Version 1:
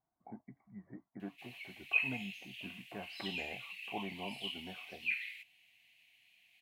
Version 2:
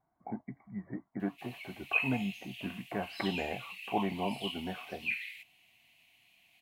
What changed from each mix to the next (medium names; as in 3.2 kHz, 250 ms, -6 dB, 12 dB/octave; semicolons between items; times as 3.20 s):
speech +10.0 dB; master: add treble shelf 4.8 kHz +6 dB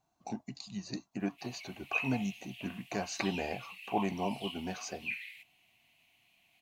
speech: remove brick-wall FIR low-pass 2.3 kHz; background -3.5 dB